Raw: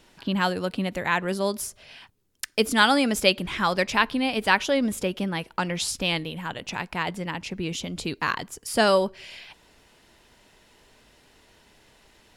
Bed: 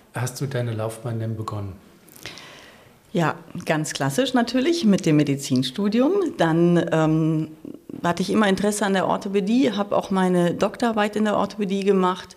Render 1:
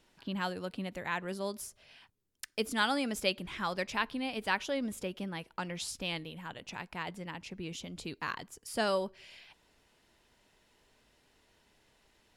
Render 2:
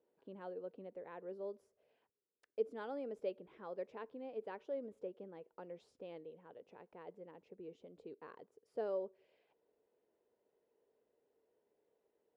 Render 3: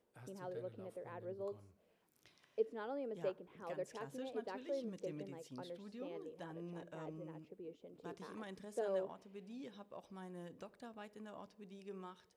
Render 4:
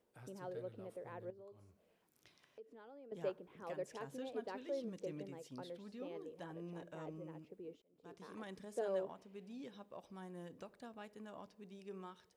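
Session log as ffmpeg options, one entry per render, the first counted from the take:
-af "volume=0.282"
-af "bandpass=f=460:t=q:w=4.4:csg=0"
-filter_complex "[1:a]volume=0.0266[s0];[0:a][s0]amix=inputs=2:normalize=0"
-filter_complex "[0:a]asettb=1/sr,asplit=3[s0][s1][s2];[s0]atrim=end=1.304[s3];[s1]atrim=start=1.3:end=3.12,asetpts=PTS-STARTPTS,afade=t=in:d=0.004:c=qsin,afade=t=out:st=1.816:d=0.004:c=qsin,acompressor=threshold=0.00126:ratio=3:attack=3.2:release=140:knee=1:detection=peak[s4];[s2]atrim=start=3.116[s5];[s3][s4]acrossfade=d=0.004:c1=hsin:c2=qsin[s6];[s6][s5]acrossfade=d=0.004:c1=qsin:c2=hsin,asplit=2[s7][s8];[s7]atrim=end=7.82,asetpts=PTS-STARTPTS,afade=t=out:st=7.816:d=0.004:c=hsin[s9];[s8]atrim=start=7.82,asetpts=PTS-STARTPTS,afade=t=in:d=0.61[s10];[s9][s10]concat=n=2:v=0:a=1"

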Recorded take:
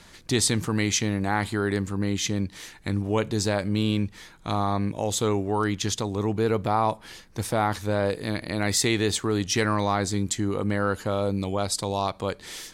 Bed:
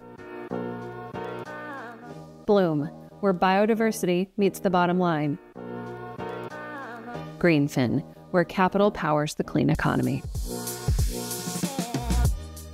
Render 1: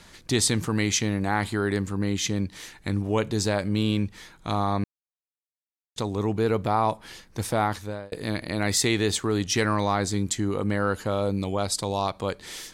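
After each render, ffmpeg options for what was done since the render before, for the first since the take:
-filter_complex "[0:a]asplit=4[s0][s1][s2][s3];[s0]atrim=end=4.84,asetpts=PTS-STARTPTS,afade=t=out:st=4.836:d=0.004:c=hsin[s4];[s1]atrim=start=4.84:end=5.96,asetpts=PTS-STARTPTS,volume=0[s5];[s2]atrim=start=5.96:end=8.12,asetpts=PTS-STARTPTS,afade=t=in:d=0.004:c=hsin,afade=t=out:st=1.67:d=0.49[s6];[s3]atrim=start=8.12,asetpts=PTS-STARTPTS,afade=t=in:d=0.004:c=hsin[s7];[s4][s5][s6][s7]concat=n=4:v=0:a=1"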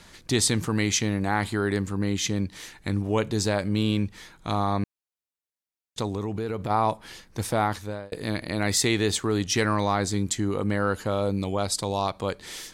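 -filter_complex "[0:a]asplit=3[s0][s1][s2];[s0]afade=t=out:st=6.12:d=0.02[s3];[s1]acompressor=threshold=0.0562:ratio=6:attack=3.2:release=140:knee=1:detection=peak,afade=t=in:st=6.12:d=0.02,afade=t=out:st=6.69:d=0.02[s4];[s2]afade=t=in:st=6.69:d=0.02[s5];[s3][s4][s5]amix=inputs=3:normalize=0"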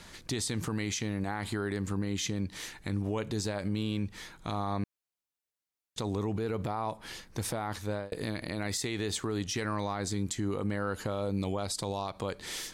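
-af "acompressor=threshold=0.0501:ratio=6,alimiter=limit=0.0668:level=0:latency=1:release=71"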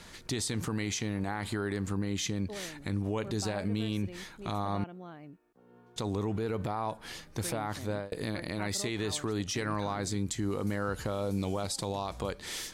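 -filter_complex "[1:a]volume=0.0708[s0];[0:a][s0]amix=inputs=2:normalize=0"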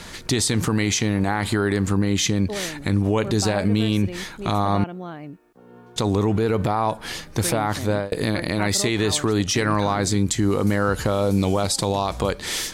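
-af "volume=3.98"

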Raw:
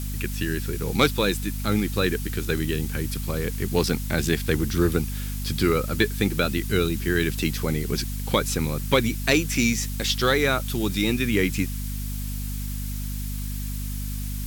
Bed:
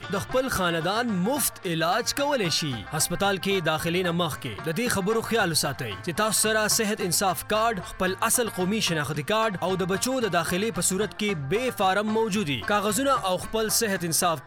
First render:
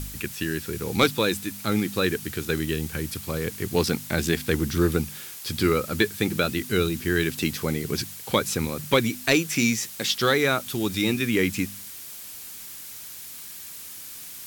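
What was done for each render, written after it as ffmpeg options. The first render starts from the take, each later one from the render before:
-af "bandreject=f=50:t=h:w=4,bandreject=f=100:t=h:w=4,bandreject=f=150:t=h:w=4,bandreject=f=200:t=h:w=4,bandreject=f=250:t=h:w=4"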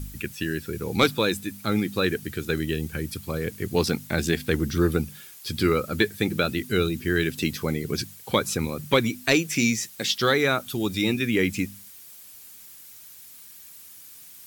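-af "afftdn=nr=9:nf=-40"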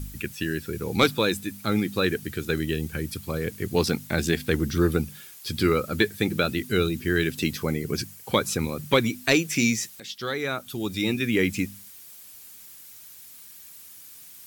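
-filter_complex "[0:a]asettb=1/sr,asplit=3[s0][s1][s2];[s0]atrim=end=7.634[s3];[s1]atrim=start=7.63:end=8.33,asetpts=PTS-STARTPTS,afade=t=in:d=0.004:c=qsin,afade=t=out:st=0.696:d=0.004:c=qsin,equalizer=f=3700:w=3.6:g=-5.5[s4];[s2]atrim=start=8.326[s5];[s3][s4]acrossfade=d=0.004:c1=hsin:c2=qsin[s6];[s6][s5]acrossfade=d=0.004:c1=qsin:c2=hsin,asplit=2[s7][s8];[s7]atrim=end=10,asetpts=PTS-STARTPTS,afade=t=out:st=9.996:d=0.004:c=hsin:silence=0.188365[s9];[s8]atrim=start=10,asetpts=PTS-STARTPTS,afade=t=in:d=1.35:silence=0.188365[s10];[s9][s10]concat=n=2:v=0:a=1"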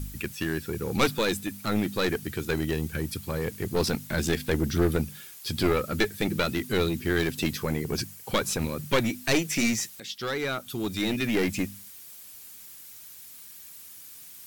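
-af "aeval=exprs='clip(val(0),-1,0.0596)':c=same"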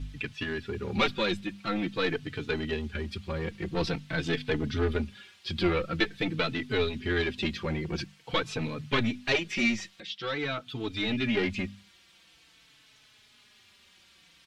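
-filter_complex "[0:a]lowpass=f=3300:t=q:w=1.6,asplit=2[s0][s1];[s1]adelay=4.1,afreqshift=-0.47[s2];[s0][s2]amix=inputs=2:normalize=1"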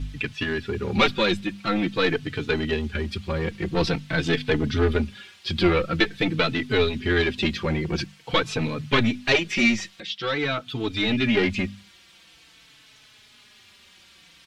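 -af "volume=2.11,alimiter=limit=0.708:level=0:latency=1"

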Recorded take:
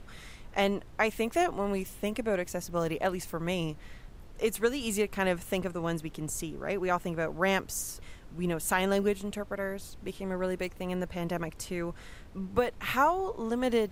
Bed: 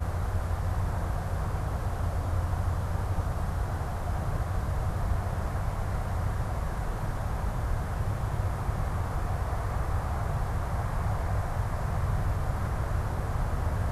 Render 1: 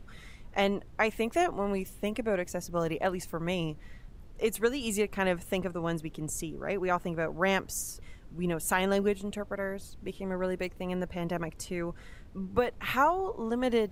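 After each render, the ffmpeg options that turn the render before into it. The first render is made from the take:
-af "afftdn=nr=6:nf=-49"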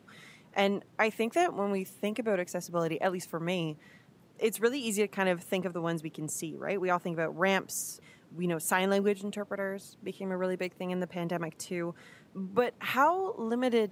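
-af "highpass=f=140:w=0.5412,highpass=f=140:w=1.3066"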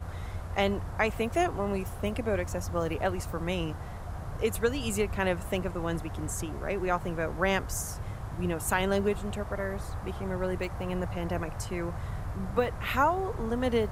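-filter_complex "[1:a]volume=0.422[s0];[0:a][s0]amix=inputs=2:normalize=0"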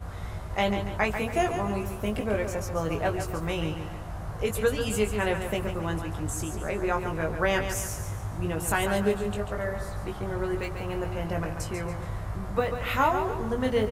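-filter_complex "[0:a]asplit=2[s0][s1];[s1]adelay=19,volume=0.596[s2];[s0][s2]amix=inputs=2:normalize=0,aecho=1:1:141|282|423|564|705:0.398|0.171|0.0736|0.0317|0.0136"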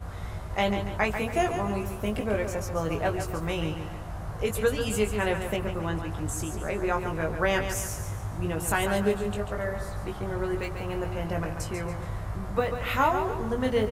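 -filter_complex "[0:a]asettb=1/sr,asplit=3[s0][s1][s2];[s0]atrim=end=5.564[s3];[s1]atrim=start=5.56:end=6.18,asetpts=PTS-STARTPTS,afade=t=in:d=0.004:c=qsin,afade=t=out:st=0.616:d=0.004:c=qsin,acrossover=split=4700[s4][s5];[s5]acompressor=threshold=0.00178:ratio=4:attack=1:release=60[s6];[s4][s6]amix=inputs=2:normalize=0[s7];[s2]atrim=start=6.176[s8];[s3][s7]acrossfade=d=0.004:c1=hsin:c2=qsin[s9];[s9][s8]acrossfade=d=0.004:c1=qsin:c2=hsin"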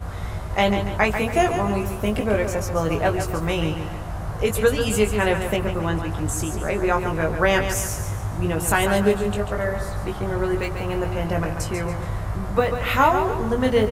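-af "volume=2.11"

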